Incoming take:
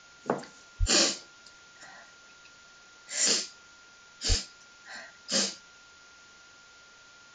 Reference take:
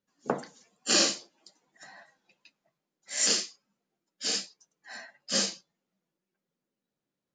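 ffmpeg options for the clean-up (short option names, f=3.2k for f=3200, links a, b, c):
-filter_complex "[0:a]bandreject=f=1.4k:w=30,asplit=3[a][b][c];[a]afade=t=out:st=0.79:d=0.02[d];[b]highpass=f=140:w=0.5412,highpass=f=140:w=1.3066,afade=t=in:st=0.79:d=0.02,afade=t=out:st=0.91:d=0.02[e];[c]afade=t=in:st=0.91:d=0.02[f];[d][e][f]amix=inputs=3:normalize=0,asplit=3[g][h][i];[g]afade=t=out:st=4.28:d=0.02[j];[h]highpass=f=140:w=0.5412,highpass=f=140:w=1.3066,afade=t=in:st=4.28:d=0.02,afade=t=out:st=4.4:d=0.02[k];[i]afade=t=in:st=4.4:d=0.02[l];[j][k][l]amix=inputs=3:normalize=0,afwtdn=0.0025"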